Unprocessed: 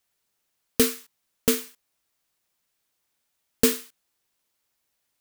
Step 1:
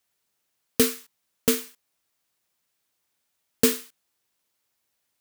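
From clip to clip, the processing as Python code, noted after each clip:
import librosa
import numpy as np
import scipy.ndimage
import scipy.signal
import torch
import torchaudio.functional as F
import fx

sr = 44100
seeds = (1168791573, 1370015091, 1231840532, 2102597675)

y = scipy.signal.sosfilt(scipy.signal.butter(2, 55.0, 'highpass', fs=sr, output='sos'), x)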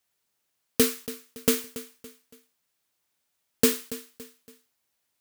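y = fx.echo_feedback(x, sr, ms=282, feedback_pct=39, wet_db=-15.5)
y = y * 10.0 ** (-1.0 / 20.0)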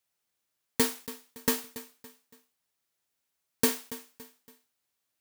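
y = fx.bit_reversed(x, sr, seeds[0], block=32)
y = y * 10.0 ** (-4.5 / 20.0)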